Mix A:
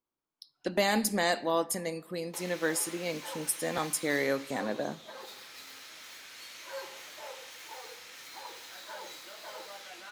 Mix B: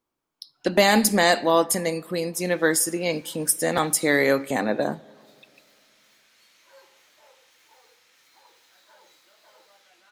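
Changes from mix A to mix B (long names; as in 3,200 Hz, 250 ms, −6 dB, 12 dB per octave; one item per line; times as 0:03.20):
speech +9.5 dB
background −12.0 dB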